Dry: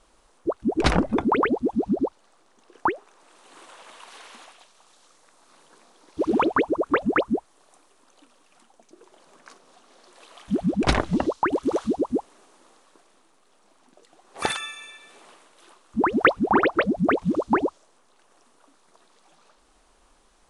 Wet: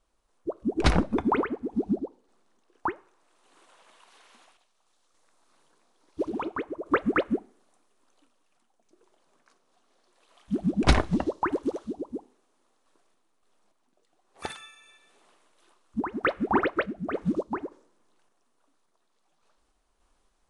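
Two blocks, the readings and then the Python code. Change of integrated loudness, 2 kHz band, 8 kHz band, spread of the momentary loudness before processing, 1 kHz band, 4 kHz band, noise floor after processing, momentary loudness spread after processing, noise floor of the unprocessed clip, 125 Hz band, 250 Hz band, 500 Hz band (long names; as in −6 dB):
−5.0 dB, −6.0 dB, −5.0 dB, 10 LU, −6.0 dB, −4.5 dB, −71 dBFS, 15 LU, −61 dBFS, −1.0 dB, −4.5 dB, −6.0 dB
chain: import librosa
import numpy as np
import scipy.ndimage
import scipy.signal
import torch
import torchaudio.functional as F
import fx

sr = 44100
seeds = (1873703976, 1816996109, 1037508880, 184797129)

y = fx.low_shelf(x, sr, hz=120.0, db=6.0)
y = fx.rev_double_slope(y, sr, seeds[0], early_s=0.51, late_s=2.1, knee_db=-26, drr_db=14.0)
y = fx.tremolo_random(y, sr, seeds[1], hz=3.5, depth_pct=55)
y = fx.upward_expand(y, sr, threshold_db=-35.0, expansion=1.5)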